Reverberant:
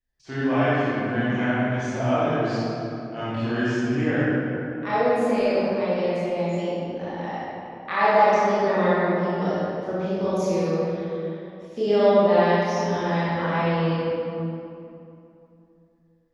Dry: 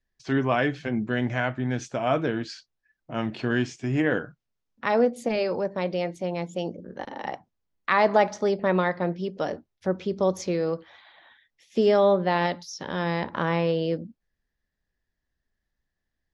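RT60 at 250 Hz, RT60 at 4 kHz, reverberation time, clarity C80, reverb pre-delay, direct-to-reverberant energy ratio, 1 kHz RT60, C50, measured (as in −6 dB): 3.2 s, 1.6 s, 2.8 s, −3.0 dB, 21 ms, −11.5 dB, 2.6 s, −6.0 dB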